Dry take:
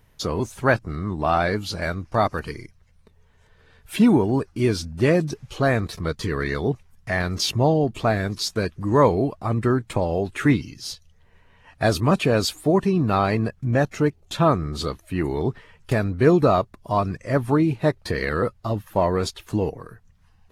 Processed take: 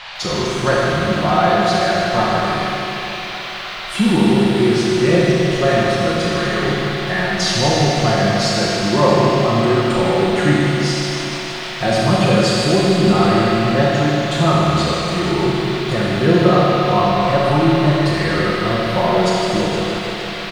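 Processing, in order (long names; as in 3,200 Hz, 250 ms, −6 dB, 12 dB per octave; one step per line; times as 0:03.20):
low-pass filter 9,300 Hz 24 dB per octave
parametric band 2,300 Hz −4 dB 0.39 octaves
comb filter 5.6 ms, depth 80%
in parallel at +2 dB: downward compressor, threshold −26 dBFS, peak gain reduction 16.5 dB
on the sum: noise in a band 600–4,000 Hz −31 dBFS
on a send: echo with a time of its own for lows and highs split 750 Hz, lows 320 ms, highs 92 ms, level −15 dB
on the sum: four-comb reverb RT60 2.4 s, combs from 27 ms, DRR −4 dB
feedback echo at a low word length 154 ms, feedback 80%, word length 7 bits, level −10 dB
level −4.5 dB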